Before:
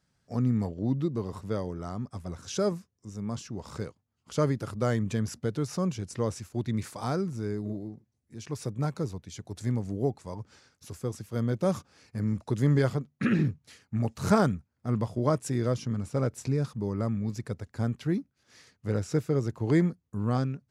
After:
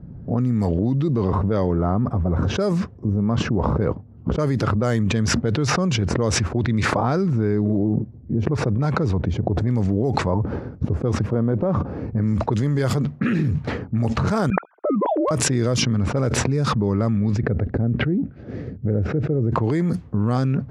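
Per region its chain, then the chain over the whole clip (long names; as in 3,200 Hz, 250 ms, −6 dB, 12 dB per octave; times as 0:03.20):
0:11.33–0:11.77: Butterworth low-pass 6,800 Hz + low-shelf EQ 150 Hz −7.5 dB + downward compressor 5 to 1, threshold −32 dBFS
0:14.50–0:15.31: three sine waves on the formant tracks + high-pass filter 380 Hz 24 dB per octave + hard clipping −17 dBFS
0:17.37–0:19.52: treble cut that deepens with the level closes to 770 Hz, closed at −26 dBFS + parametric band 1,000 Hz −12 dB 0.69 octaves
whole clip: low-pass that shuts in the quiet parts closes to 300 Hz, open at −22 dBFS; envelope flattener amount 100%; level −2 dB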